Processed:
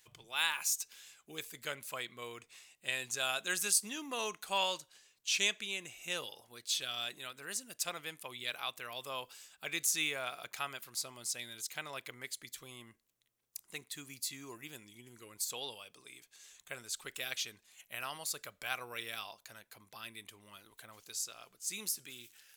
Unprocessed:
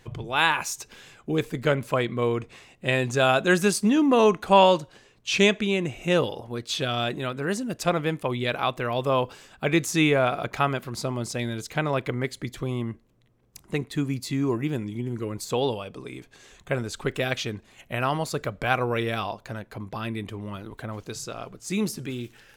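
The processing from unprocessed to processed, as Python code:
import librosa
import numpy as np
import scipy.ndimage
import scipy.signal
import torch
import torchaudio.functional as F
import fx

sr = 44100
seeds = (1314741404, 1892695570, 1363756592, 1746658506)

y = librosa.effects.preemphasis(x, coef=0.97, zi=[0.0])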